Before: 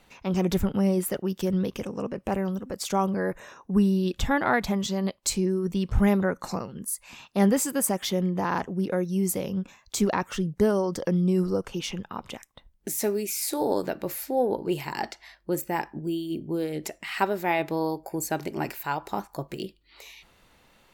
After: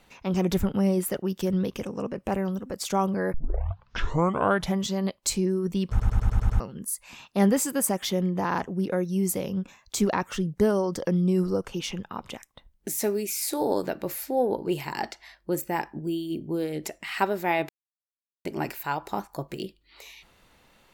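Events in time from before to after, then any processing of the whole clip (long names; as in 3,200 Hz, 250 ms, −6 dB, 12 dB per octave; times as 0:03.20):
0:03.34: tape start 1.45 s
0:05.90: stutter in place 0.10 s, 7 plays
0:17.69–0:18.45: silence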